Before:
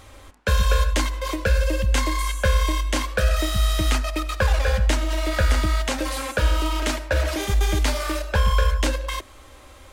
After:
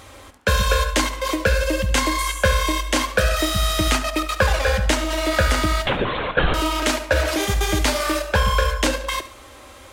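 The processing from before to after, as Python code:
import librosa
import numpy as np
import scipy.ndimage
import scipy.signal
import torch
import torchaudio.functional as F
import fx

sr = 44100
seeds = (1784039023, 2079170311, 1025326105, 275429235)

p1 = fx.highpass(x, sr, hz=110.0, slope=6)
p2 = fx.lpc_vocoder(p1, sr, seeds[0], excitation='whisper', order=16, at=(5.85, 6.54))
p3 = p2 + fx.echo_feedback(p2, sr, ms=70, feedback_pct=36, wet_db=-14, dry=0)
y = p3 * 10.0 ** (5.0 / 20.0)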